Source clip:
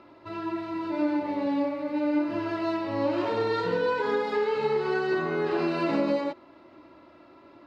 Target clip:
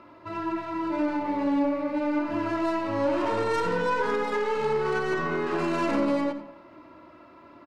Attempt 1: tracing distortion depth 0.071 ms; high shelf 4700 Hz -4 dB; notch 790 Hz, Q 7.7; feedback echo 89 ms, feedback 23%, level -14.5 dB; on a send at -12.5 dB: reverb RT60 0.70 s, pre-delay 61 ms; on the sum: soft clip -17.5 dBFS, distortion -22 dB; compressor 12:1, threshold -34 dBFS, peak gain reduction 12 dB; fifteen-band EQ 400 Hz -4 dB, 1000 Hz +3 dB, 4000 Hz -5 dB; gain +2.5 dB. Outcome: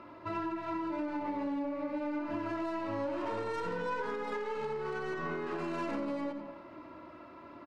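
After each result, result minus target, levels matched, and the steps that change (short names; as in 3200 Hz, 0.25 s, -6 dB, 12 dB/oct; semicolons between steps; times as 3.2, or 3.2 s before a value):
compressor: peak gain reduction +12 dB; 8000 Hz band -3.0 dB
remove: compressor 12:1, threshold -34 dBFS, peak gain reduction 12 dB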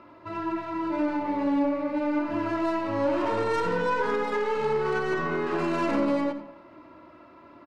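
8000 Hz band -2.5 dB
remove: high shelf 4700 Hz -4 dB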